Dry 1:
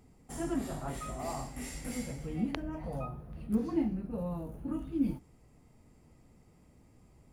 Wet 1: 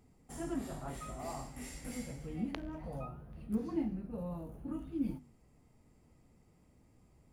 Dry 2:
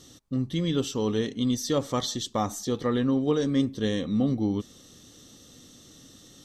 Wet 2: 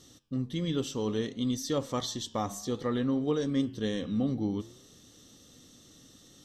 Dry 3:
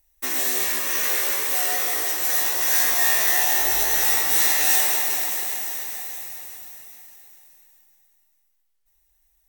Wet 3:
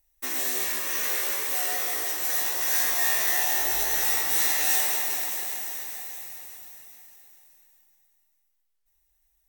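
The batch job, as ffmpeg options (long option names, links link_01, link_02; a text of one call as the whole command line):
ffmpeg -i in.wav -af "flanger=delay=8.5:depth=9.5:regen=-89:speed=0.59:shape=triangular" out.wav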